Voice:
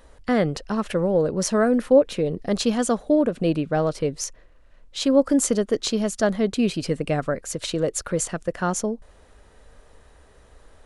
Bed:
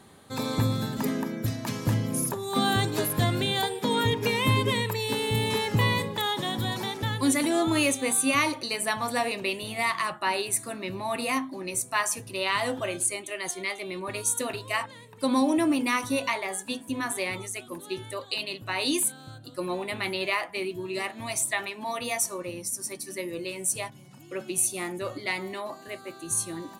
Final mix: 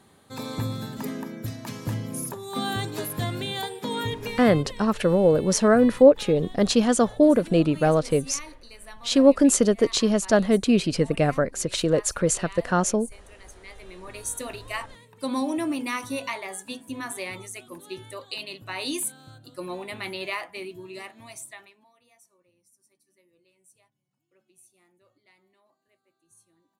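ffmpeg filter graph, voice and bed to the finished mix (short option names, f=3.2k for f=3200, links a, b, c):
-filter_complex "[0:a]adelay=4100,volume=2dB[a];[1:a]volume=10dB,afade=t=out:st=4.04:d=0.68:silence=0.211349,afade=t=in:st=13.59:d=0.9:silence=0.199526,afade=t=out:st=20.33:d=1.57:silence=0.0375837[b];[a][b]amix=inputs=2:normalize=0"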